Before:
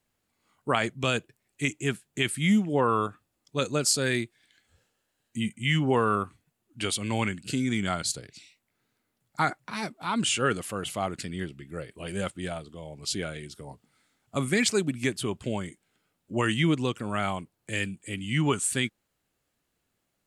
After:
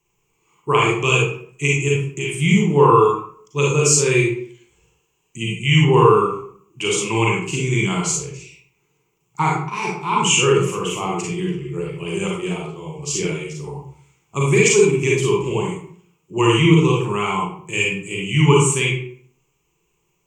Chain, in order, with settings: rippled EQ curve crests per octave 0.73, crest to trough 18 dB; 1.88–2.32 s: compression 6:1, threshold -27 dBFS, peak gain reduction 11.5 dB; reverberation RT60 0.55 s, pre-delay 34 ms, DRR -3.5 dB; trim +1 dB

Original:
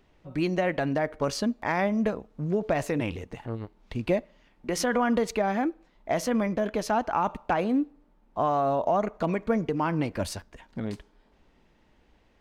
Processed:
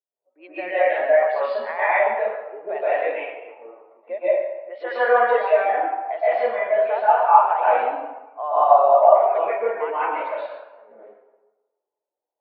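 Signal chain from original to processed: high-pass 490 Hz 24 dB/octave; level-controlled noise filter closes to 630 Hz, open at -24.5 dBFS; steep low-pass 4 kHz 48 dB/octave; tilt shelf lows -3.5 dB, about 1.2 kHz; reverberation RT60 1.6 s, pre-delay 115 ms, DRR -9.5 dB; spectral contrast expander 1.5:1; trim +3.5 dB

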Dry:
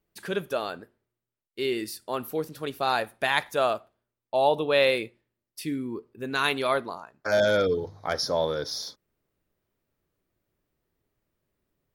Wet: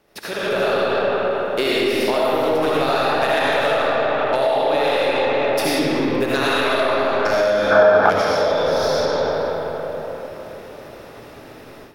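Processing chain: spectral levelling over time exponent 0.6; transient shaper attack +8 dB, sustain -5 dB; algorithmic reverb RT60 3.7 s, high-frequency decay 0.55×, pre-delay 40 ms, DRR -8.5 dB; compression 6:1, threshold -16 dBFS, peak gain reduction 12.5 dB; saturation -12 dBFS, distortion -20 dB; level rider gain up to 12.5 dB; time-frequency box 7.72–8.10 s, 610–1800 Hz +10 dB; trim -8 dB

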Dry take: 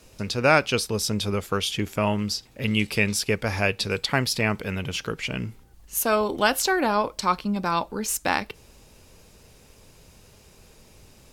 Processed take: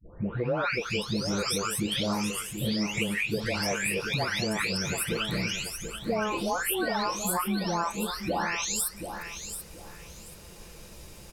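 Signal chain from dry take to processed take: delay that grows with frequency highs late, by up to 712 ms; compression 5:1, threshold -33 dBFS, peak gain reduction 13.5 dB; feedback delay 733 ms, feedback 24%, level -9 dB; trim +6 dB

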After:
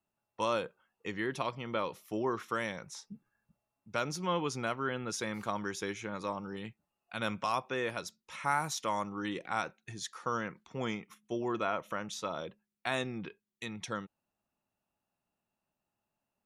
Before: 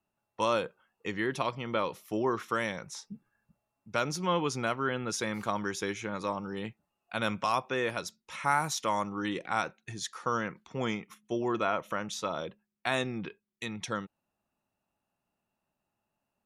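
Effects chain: 6.56–7.21 s: dynamic bell 620 Hz, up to -5 dB, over -50 dBFS, Q 0.71; trim -3.5 dB

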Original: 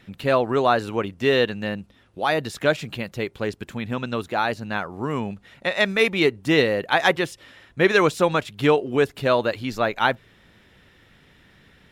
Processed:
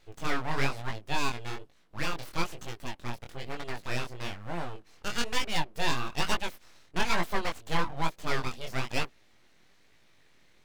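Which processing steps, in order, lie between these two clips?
wide varispeed 1.12×; full-wave rectifier; chorus 1.1 Hz, delay 17.5 ms, depth 7.7 ms; trim -4.5 dB

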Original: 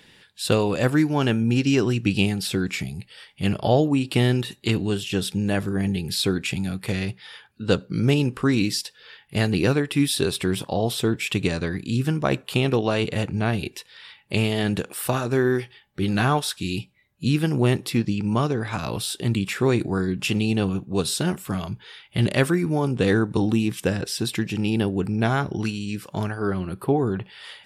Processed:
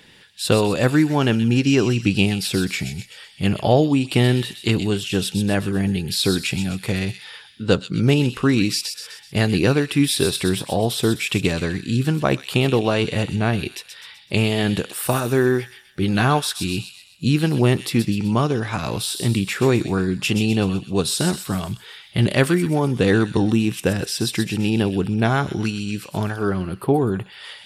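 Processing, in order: feedback echo behind a high-pass 127 ms, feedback 47%, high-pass 3.2 kHz, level -5.5 dB; trim +3 dB

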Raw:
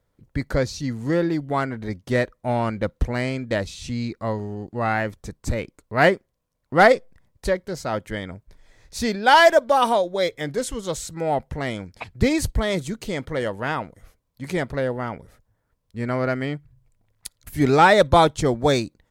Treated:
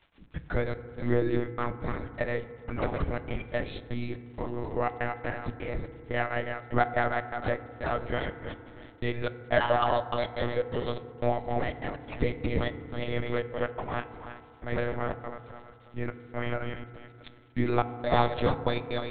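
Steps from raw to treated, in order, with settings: backward echo that repeats 161 ms, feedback 51%, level -6 dB; compression 2:1, threshold -25 dBFS, peak gain reduction 9 dB; trance gate ".xx.xx..xxxx.x" 123 bpm -60 dB; crackle 60 per s -37 dBFS; flange 1.7 Hz, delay 5.9 ms, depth 1 ms, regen +60%; monotone LPC vocoder at 8 kHz 120 Hz; FDN reverb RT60 2.4 s, low-frequency decay 1.05×, high-frequency decay 0.25×, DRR 10.5 dB; trim +2.5 dB

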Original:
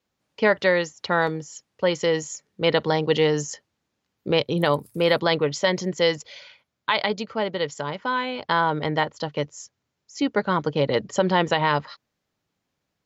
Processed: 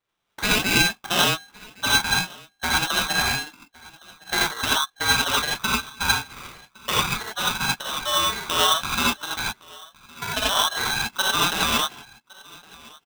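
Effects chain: steep high-pass 440 Hz 72 dB/octave; tilt EQ +4 dB/octave; peak limiter -10.5 dBFS, peak gain reduction 8.5 dB; transient shaper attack +4 dB, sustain -7 dB; delay 1112 ms -23.5 dB; gated-style reverb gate 110 ms rising, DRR -5.5 dB; frequency inversion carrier 3.3 kHz; polarity switched at an audio rate 1.2 kHz; trim -4.5 dB

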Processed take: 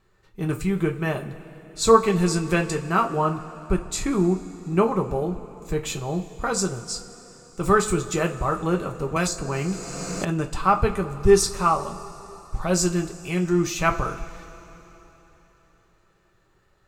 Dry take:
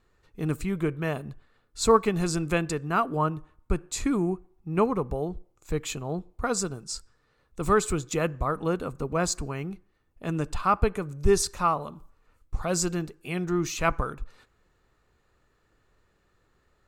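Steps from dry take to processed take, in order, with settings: two-slope reverb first 0.22 s, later 3.7 s, from -21 dB, DRR 2 dB; 9.16–10.25 s: three bands compressed up and down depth 100%; trim +2 dB

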